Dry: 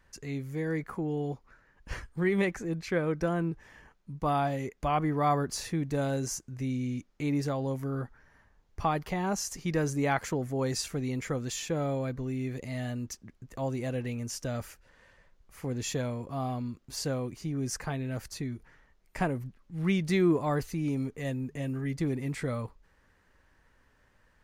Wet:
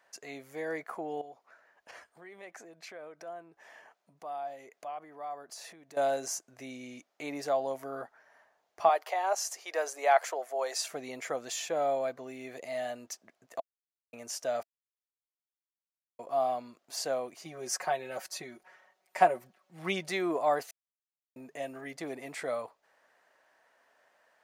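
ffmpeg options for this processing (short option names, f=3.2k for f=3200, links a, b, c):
-filter_complex "[0:a]asettb=1/sr,asplit=3[a][b][c];[a]atrim=end=1.214[d];[b]atrim=start=1.21:end=5.97,asetpts=PTS-STARTPTS,afade=t=in:d=0.004:c=qsin,afade=t=out:st=4.756:d=0.004:c=qsin,acompressor=threshold=-43dB:ratio=5:attack=3.2:release=140:knee=1:detection=peak[e];[c]atrim=start=5.966[f];[d][e]acrossfade=d=0.004:c1=hsin:c2=qsin[g];[g][f]acrossfade=d=0.004:c1=qsin:c2=hsin,asettb=1/sr,asplit=3[h][i][j];[h]atrim=end=8.894[k];[i]atrim=start=8.89:end=10.87,asetpts=PTS-STARTPTS,afade=t=in:d=0.004:c=qsin,afade=t=out:st=1.976:d=0.004:c=qsin,highpass=f=440:w=0.5412,highpass=f=440:w=1.3066[l];[j]atrim=start=10.866[m];[k][l]acrossfade=d=0.004:c1=hsin:c2=qsin[n];[n][m]acrossfade=d=0.004:c1=qsin:c2=hsin,asettb=1/sr,asplit=3[o][p][q];[o]atrim=end=17.454[r];[p]atrim=start=17.45:end=20.09,asetpts=PTS-STARTPTS,afade=t=in:d=0.004:c=qsin,afade=t=out:st=2.636:d=0.004:c=qsin,aecho=1:1:5.4:0.84,atrim=end_sample=116424[s];[q]atrim=start=20.086[t];[r][s]acrossfade=d=0.004:c1=hsin:c2=qsin[u];[u][t]acrossfade=d=0.004:c1=qsin:c2=hsin,asplit=7[v][w][x][y][z][aa][ab];[v]atrim=end=13.6,asetpts=PTS-STARTPTS,afade=t=out:st=13.596:d=0.004:c=hsin[ac];[w]atrim=start=13.6:end=14.13,asetpts=PTS-STARTPTS,volume=0[ad];[x]atrim=start=14.13:end=14.63,asetpts=PTS-STARTPTS,afade=t=in:d=0.004:c=hsin,afade=t=out:st=0.496:d=0.004:c=hsin[ae];[y]atrim=start=14.63:end=16.19,asetpts=PTS-STARTPTS,volume=0[af];[z]atrim=start=16.19:end=20.71,asetpts=PTS-STARTPTS,afade=t=in:d=0.004:c=hsin,afade=t=out:st=4.516:d=0.004:c=hsin[ag];[aa]atrim=start=20.71:end=21.36,asetpts=PTS-STARTPTS,volume=0[ah];[ab]atrim=start=21.36,asetpts=PTS-STARTPTS,afade=t=in:d=0.004:c=hsin[ai];[ac][ad][ae][af][ag][ah][ai]concat=n=7:v=0:a=1,highpass=520,equalizer=f=670:w=3.4:g=12.5"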